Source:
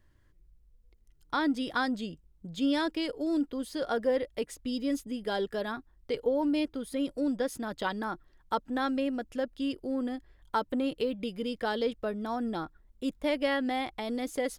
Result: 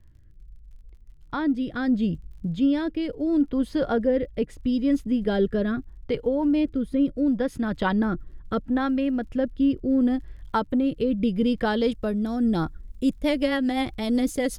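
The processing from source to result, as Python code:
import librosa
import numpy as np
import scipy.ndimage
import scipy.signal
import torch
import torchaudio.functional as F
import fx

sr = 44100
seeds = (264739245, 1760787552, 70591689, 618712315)

y = fx.bass_treble(x, sr, bass_db=12, treble_db=fx.steps((0.0, -12.0), (9.89, -6.0), (11.83, 4.0)))
y = fx.rider(y, sr, range_db=4, speed_s=0.5)
y = fx.dmg_crackle(y, sr, seeds[0], per_s=40.0, level_db=-55.0)
y = fx.rotary_switch(y, sr, hz=0.75, then_hz=8.0, switch_at_s=12.42)
y = F.gain(torch.from_numpy(y), 6.0).numpy()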